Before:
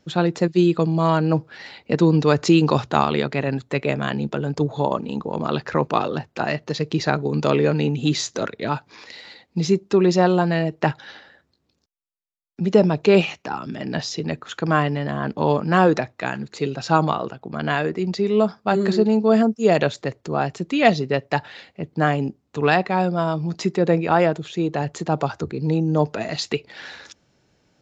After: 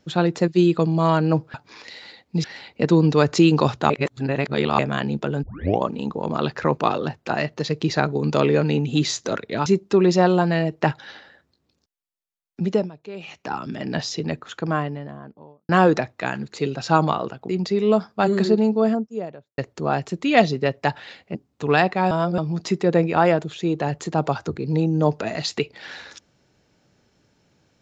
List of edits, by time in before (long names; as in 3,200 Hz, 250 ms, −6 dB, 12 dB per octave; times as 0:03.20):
0:03.00–0:03.89: reverse
0:04.53: tape start 0.39 s
0:08.76–0:09.66: move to 0:01.54
0:12.61–0:13.50: duck −21 dB, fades 0.30 s
0:14.13–0:15.69: fade out and dull
0:17.49–0:17.97: remove
0:18.91–0:20.06: fade out and dull
0:21.83–0:22.29: remove
0:23.05–0:23.32: reverse